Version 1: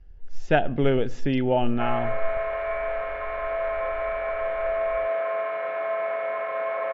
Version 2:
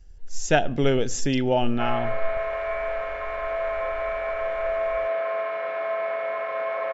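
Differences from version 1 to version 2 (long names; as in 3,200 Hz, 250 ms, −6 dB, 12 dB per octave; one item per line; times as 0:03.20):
speech: remove high-frequency loss of the air 120 metres
master: remove low-pass filter 3,100 Hz 12 dB per octave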